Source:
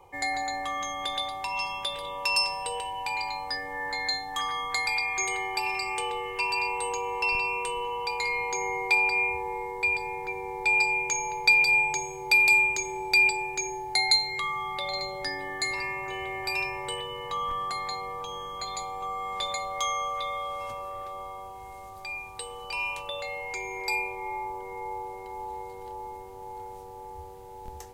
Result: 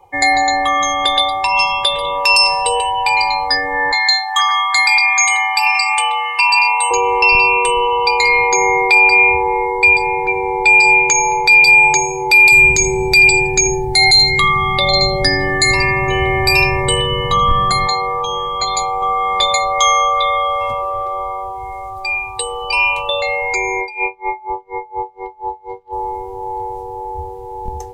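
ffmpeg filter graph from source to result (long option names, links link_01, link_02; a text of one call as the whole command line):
ffmpeg -i in.wav -filter_complex "[0:a]asettb=1/sr,asplit=3[link_01][link_02][link_03];[link_01]atrim=end=3.924[link_04];[link_02]atrim=start=3.92:end=6.91,asetpts=PTS-STARTPTS,afade=type=in:duration=0.004:curve=qsin,afade=type=out:start_time=2.986:duration=0.004:curve=qsin,highpass=frequency=750:width=0.5412,highpass=frequency=750:width=1.3066,acrusher=bits=9:mode=log:mix=0:aa=0.000001[link_05];[link_03]atrim=start=6.906[link_06];[link_04][link_05]acrossfade=duration=0.004:curve1=hsin:curve2=qsin[link_07];[link_07][link_06]acrossfade=duration=0.004:curve1=qsin:curve2=hsin,asettb=1/sr,asplit=3[link_08][link_09][link_10];[link_08]atrim=end=12.524[link_11];[link_09]atrim=start=12.52:end=17.87,asetpts=PTS-STARTPTS,afade=type=in:duration=0.004:curve=qsin,afade=type=out:start_time=5.346:duration=0.004:curve=qsin,bass=frequency=250:gain=12,treble=frequency=4000:gain=4,bandreject=frequency=870:width=24,aecho=1:1:82|164|246:0.158|0.0555|0.0194,atrim=end_sample=235935[link_12];[link_10]atrim=start=17.866[link_13];[link_11][link_12]acrossfade=duration=0.004:curve1=hsin:curve2=qsin[link_14];[link_14][link_13]acrossfade=duration=0.004:curve1=qsin:curve2=hsin,asettb=1/sr,asplit=3[link_15][link_16][link_17];[link_15]atrim=end=23.814[link_18];[link_16]atrim=start=23.81:end=25.93,asetpts=PTS-STARTPTS,afade=type=in:duration=0.004:curve=qsin,afade=type=out:start_time=2.116:duration=0.004:curve=qsin,lowpass=4100,aeval=exprs='val(0)*pow(10,-21*(0.5-0.5*cos(2*PI*4.2*n/s))/20)':channel_layout=same[link_19];[link_17]atrim=start=25.926[link_20];[link_18][link_19]acrossfade=duration=0.004:curve1=hsin:curve2=qsin[link_21];[link_21][link_20]acrossfade=duration=0.004:curve1=qsin:curve2=hsin,afftdn=noise_reduction=15:noise_floor=-41,alimiter=level_in=18dB:limit=-1dB:release=50:level=0:latency=1,volume=-1dB" out.wav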